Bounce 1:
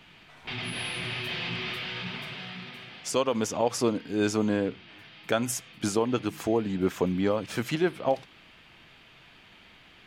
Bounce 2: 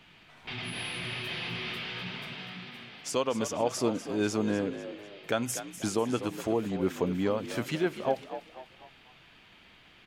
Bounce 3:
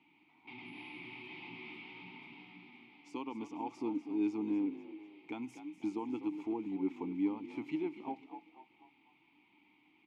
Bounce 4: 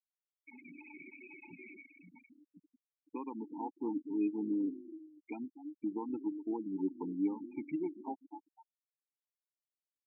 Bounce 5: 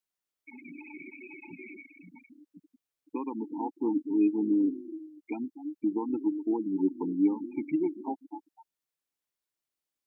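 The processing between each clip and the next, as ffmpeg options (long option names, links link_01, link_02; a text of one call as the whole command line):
ffmpeg -i in.wav -filter_complex "[0:a]asplit=5[link_01][link_02][link_03][link_04][link_05];[link_02]adelay=247,afreqshift=54,volume=-11.5dB[link_06];[link_03]adelay=494,afreqshift=108,volume=-19dB[link_07];[link_04]adelay=741,afreqshift=162,volume=-26.6dB[link_08];[link_05]adelay=988,afreqshift=216,volume=-34.1dB[link_09];[link_01][link_06][link_07][link_08][link_09]amix=inputs=5:normalize=0,volume=-3dB" out.wav
ffmpeg -i in.wav -filter_complex "[0:a]asplit=3[link_01][link_02][link_03];[link_01]bandpass=frequency=300:width_type=q:width=8,volume=0dB[link_04];[link_02]bandpass=frequency=870:width_type=q:width=8,volume=-6dB[link_05];[link_03]bandpass=frequency=2240:width_type=q:width=8,volume=-9dB[link_06];[link_04][link_05][link_06]amix=inputs=3:normalize=0,volume=2dB" out.wav
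ffmpeg -i in.wav -af "afftfilt=real='re*gte(hypot(re,im),0.0141)':imag='im*gte(hypot(re,im),0.0141)':win_size=1024:overlap=0.75" out.wav
ffmpeg -i in.wav -af "equalizer=frequency=320:width_type=o:width=0.77:gain=3,volume=5.5dB" out.wav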